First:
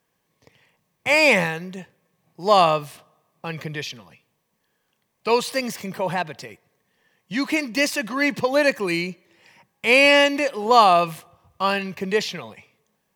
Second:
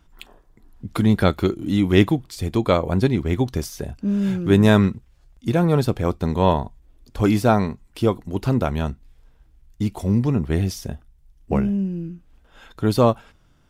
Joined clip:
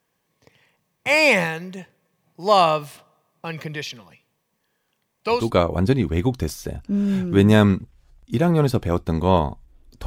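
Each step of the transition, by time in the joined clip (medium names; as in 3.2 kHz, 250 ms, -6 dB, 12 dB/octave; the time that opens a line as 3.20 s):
first
5.40 s: go over to second from 2.54 s, crossfade 0.22 s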